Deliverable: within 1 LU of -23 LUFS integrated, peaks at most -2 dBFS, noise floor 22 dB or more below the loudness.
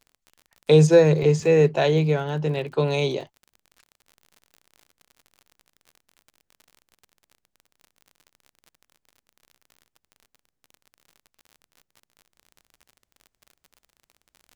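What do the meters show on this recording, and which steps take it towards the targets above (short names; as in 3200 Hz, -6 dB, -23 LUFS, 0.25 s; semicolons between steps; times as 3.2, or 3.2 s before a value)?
ticks 46/s; loudness -20.0 LUFS; peak -4.5 dBFS; loudness target -23.0 LUFS
-> de-click; gain -3 dB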